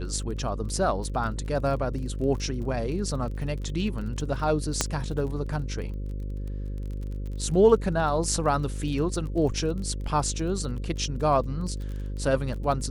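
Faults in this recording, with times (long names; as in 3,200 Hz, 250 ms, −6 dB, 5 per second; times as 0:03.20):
mains buzz 50 Hz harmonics 11 −32 dBFS
surface crackle 24 per second −35 dBFS
0:04.81: click −7 dBFS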